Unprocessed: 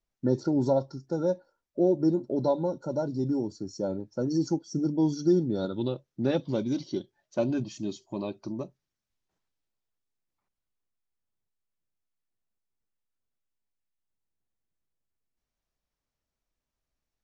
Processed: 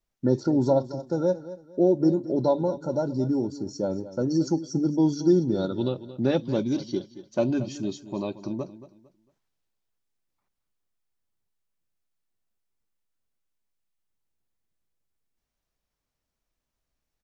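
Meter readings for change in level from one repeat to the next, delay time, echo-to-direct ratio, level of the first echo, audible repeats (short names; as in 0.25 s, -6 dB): -11.0 dB, 0.226 s, -14.5 dB, -15.0 dB, 2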